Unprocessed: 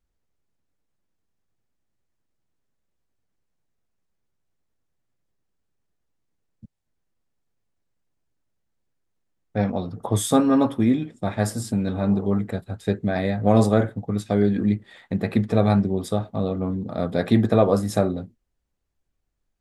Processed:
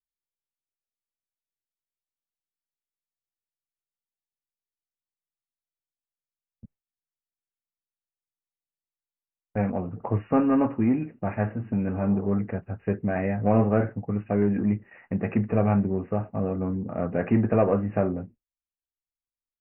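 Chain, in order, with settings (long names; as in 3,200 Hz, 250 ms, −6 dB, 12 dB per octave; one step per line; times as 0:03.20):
noise reduction from a noise print of the clip's start 6 dB
noise gate with hold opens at −40 dBFS
in parallel at −4.5 dB: soft clipping −21 dBFS, distortion −7 dB
on the sum: linear-phase brick-wall low-pass 2,900 Hz
level −5.5 dB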